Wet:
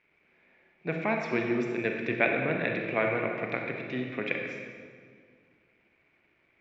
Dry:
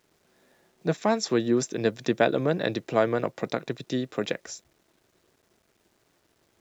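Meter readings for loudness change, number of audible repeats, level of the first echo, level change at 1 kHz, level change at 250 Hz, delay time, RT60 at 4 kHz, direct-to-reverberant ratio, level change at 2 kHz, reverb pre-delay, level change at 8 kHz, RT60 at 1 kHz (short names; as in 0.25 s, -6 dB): -3.0 dB, none, none, -4.0 dB, -4.5 dB, none, 1.4 s, 1.5 dB, +4.5 dB, 29 ms, n/a, 1.8 s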